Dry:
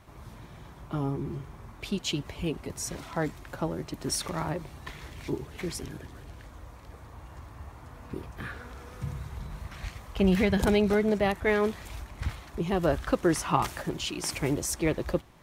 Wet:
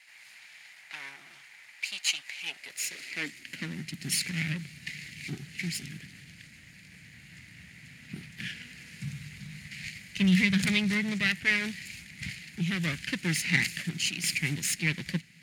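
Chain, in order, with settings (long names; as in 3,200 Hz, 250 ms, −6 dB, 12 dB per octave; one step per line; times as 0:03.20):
lower of the sound and its delayed copy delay 0.43 ms
high-pass filter sweep 840 Hz → 170 Hz, 0:02.33–0:03.92
drawn EQ curve 180 Hz 0 dB, 360 Hz −13 dB, 520 Hz −15 dB, 1,100 Hz −11 dB, 2,000 Hz +12 dB, 10,000 Hz +8 dB, 14,000 Hz −1 dB
level −3.5 dB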